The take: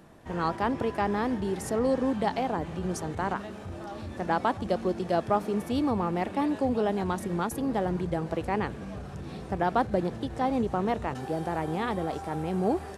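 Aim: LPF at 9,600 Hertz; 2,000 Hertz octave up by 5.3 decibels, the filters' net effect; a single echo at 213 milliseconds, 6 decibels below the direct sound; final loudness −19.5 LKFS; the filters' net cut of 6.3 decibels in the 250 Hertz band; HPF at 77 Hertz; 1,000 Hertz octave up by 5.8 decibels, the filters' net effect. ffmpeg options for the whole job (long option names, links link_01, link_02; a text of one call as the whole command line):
ffmpeg -i in.wav -af "highpass=77,lowpass=9600,equalizer=frequency=250:width_type=o:gain=-9,equalizer=frequency=1000:width_type=o:gain=7.5,equalizer=frequency=2000:width_type=o:gain=4,aecho=1:1:213:0.501,volume=7dB" out.wav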